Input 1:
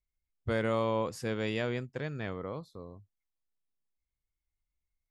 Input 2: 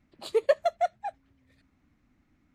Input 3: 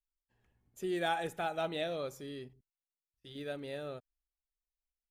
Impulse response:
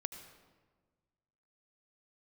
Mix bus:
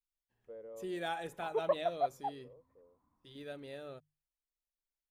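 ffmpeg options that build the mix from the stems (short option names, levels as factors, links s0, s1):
-filter_complex "[0:a]bandpass=f=490:t=q:w=5.5:csg=0,volume=0.266[s0];[1:a]lowpass=f=1000:t=q:w=11,adelay=1200,volume=0.251[s1];[2:a]volume=0.562,asplit=2[s2][s3];[s3]apad=whole_len=225281[s4];[s0][s4]sidechaincompress=threshold=0.00447:ratio=8:attack=16:release=932[s5];[s5][s1][s2]amix=inputs=3:normalize=0,bandreject=f=50:t=h:w=6,bandreject=f=100:t=h:w=6,bandreject=f=150:t=h:w=6"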